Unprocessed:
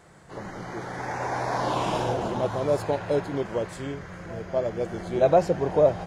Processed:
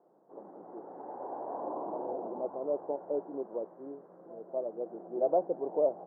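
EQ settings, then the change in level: HPF 270 Hz 24 dB/oct; inverse Chebyshev low-pass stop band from 3800 Hz, stop band 70 dB; air absorption 380 m; -7.0 dB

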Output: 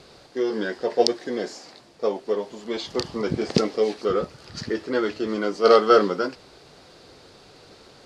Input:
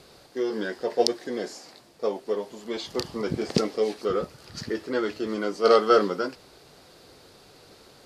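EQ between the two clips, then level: LPF 7300 Hz 12 dB/oct; +3.0 dB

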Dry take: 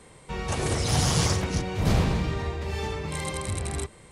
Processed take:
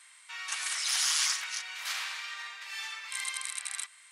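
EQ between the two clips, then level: HPF 1400 Hz 24 dB/oct; +1.0 dB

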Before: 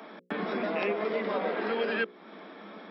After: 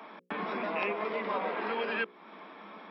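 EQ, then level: fifteen-band EQ 100 Hz +7 dB, 1000 Hz +10 dB, 2500 Hz +7 dB; -6.0 dB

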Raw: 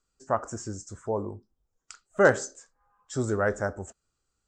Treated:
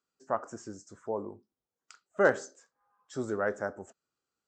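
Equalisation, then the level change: HPF 190 Hz 12 dB/oct; air absorption 78 m; -4.0 dB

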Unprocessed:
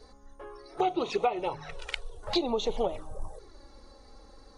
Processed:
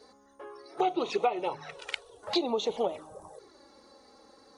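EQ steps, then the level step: HPF 190 Hz 12 dB/oct; 0.0 dB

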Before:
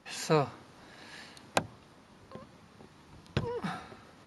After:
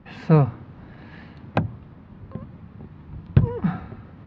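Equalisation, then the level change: air absorption 220 m; tone controls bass +15 dB, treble -12 dB; +4.5 dB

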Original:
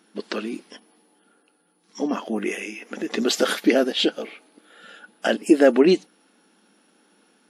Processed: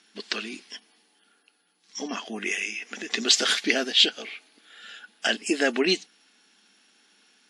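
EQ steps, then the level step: speaker cabinet 140–8000 Hz, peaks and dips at 140 Hz -9 dB, 320 Hz -5 dB, 540 Hz -9 dB, 920 Hz -5 dB, 1300 Hz -5 dB; tilt shelf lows -7 dB, about 1100 Hz; 0.0 dB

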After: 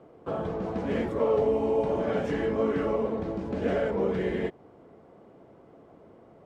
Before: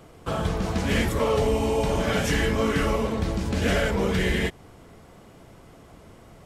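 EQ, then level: band-pass 440 Hz, Q 0.91; 0.0 dB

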